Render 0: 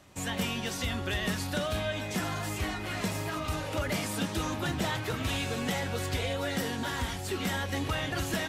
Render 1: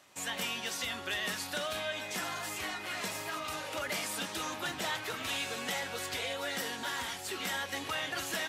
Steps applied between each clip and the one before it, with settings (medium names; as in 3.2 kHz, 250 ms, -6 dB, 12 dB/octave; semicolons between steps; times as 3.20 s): high-pass 860 Hz 6 dB/octave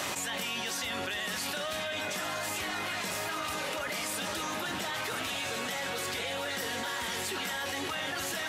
echo whose repeats swap between lows and highs 510 ms, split 1.8 kHz, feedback 66%, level -7.5 dB; level flattener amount 100%; trim -2 dB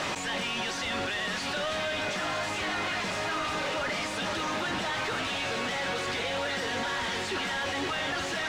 companded quantiser 2-bit; distance through air 110 m; trim -2 dB